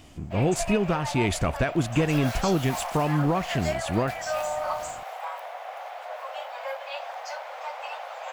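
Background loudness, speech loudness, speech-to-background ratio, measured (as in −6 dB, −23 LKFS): −33.5 LKFS, −26.0 LKFS, 7.5 dB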